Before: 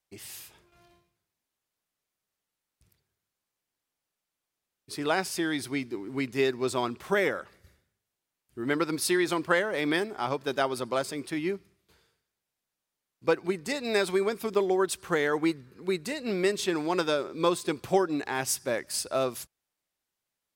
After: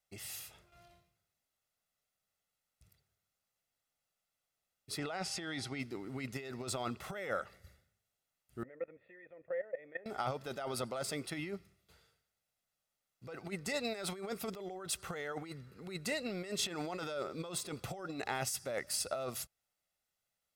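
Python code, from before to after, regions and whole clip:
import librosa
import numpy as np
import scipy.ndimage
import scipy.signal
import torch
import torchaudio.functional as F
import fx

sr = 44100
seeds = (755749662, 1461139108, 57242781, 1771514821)

y = fx.lowpass(x, sr, hz=6800.0, slope=12, at=(4.97, 5.78), fade=0.02)
y = fx.dmg_tone(y, sr, hz=790.0, level_db=-57.0, at=(4.97, 5.78), fade=0.02)
y = fx.chain(y, sr, fx.formant_cascade(vowel='e'),
    fx.level_steps(step_db=17),
    fx.air_absorb(metres=120.0), at=(8.63, 10.06))
y = fx.over_compress(y, sr, threshold_db=-32.0, ratio=-1.0)
y = y + 0.49 * np.pad(y, (int(1.5 * sr / 1000.0), 0))[:len(y)]
y = y * librosa.db_to_amplitude(-6.5)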